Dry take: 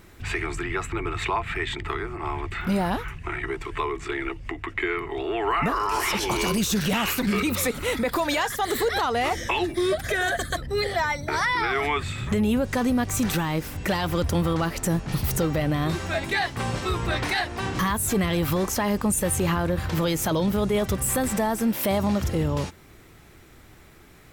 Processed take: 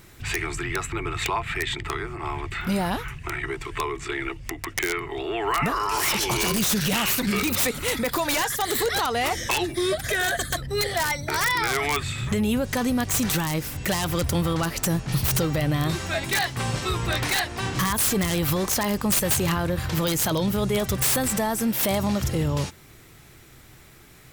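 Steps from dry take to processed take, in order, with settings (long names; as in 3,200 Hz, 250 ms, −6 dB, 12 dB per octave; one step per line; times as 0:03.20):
high-shelf EQ 2,600 Hz +7.5 dB
wrap-around overflow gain 14 dB
parametric band 130 Hz +7.5 dB 0.32 octaves
level −1.5 dB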